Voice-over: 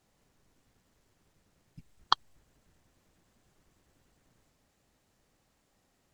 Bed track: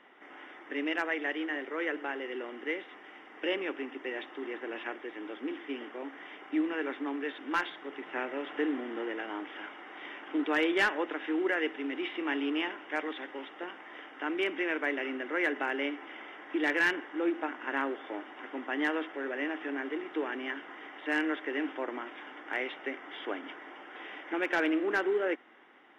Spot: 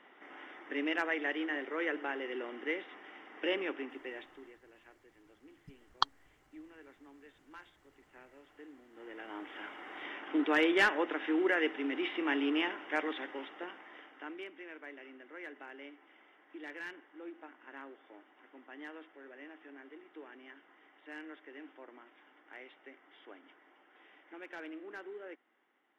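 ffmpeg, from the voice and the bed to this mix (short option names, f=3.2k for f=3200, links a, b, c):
-filter_complex "[0:a]adelay=3900,volume=-4dB[a];[1:a]volume=20.5dB,afade=t=out:st=3.62:d=0.96:silence=0.0944061,afade=t=in:st=8.92:d=0.97:silence=0.0794328,afade=t=out:st=13.15:d=1.35:silence=0.141254[b];[a][b]amix=inputs=2:normalize=0"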